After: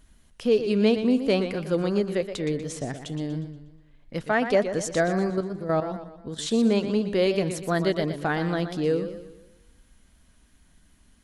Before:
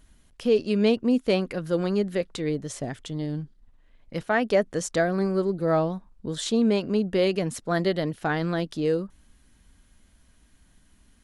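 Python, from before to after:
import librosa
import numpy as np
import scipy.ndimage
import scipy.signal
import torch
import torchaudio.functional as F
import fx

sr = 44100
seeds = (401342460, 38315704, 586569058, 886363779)

y = fx.level_steps(x, sr, step_db=11, at=(5.3, 6.47))
y = fx.echo_warbled(y, sr, ms=120, feedback_pct=45, rate_hz=2.8, cents=113, wet_db=-10)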